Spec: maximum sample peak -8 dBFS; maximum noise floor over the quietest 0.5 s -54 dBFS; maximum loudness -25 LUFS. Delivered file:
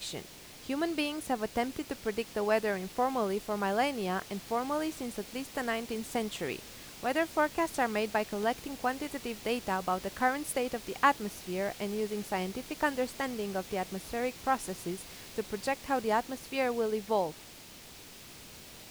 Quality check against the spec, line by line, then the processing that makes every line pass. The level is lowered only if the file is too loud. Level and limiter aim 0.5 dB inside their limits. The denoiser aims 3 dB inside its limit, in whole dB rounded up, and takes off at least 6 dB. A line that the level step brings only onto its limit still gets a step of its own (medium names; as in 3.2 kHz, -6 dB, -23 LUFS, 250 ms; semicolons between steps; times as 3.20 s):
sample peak -11.0 dBFS: pass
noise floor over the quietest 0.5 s -50 dBFS: fail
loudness -33.0 LUFS: pass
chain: noise reduction 7 dB, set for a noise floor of -50 dBFS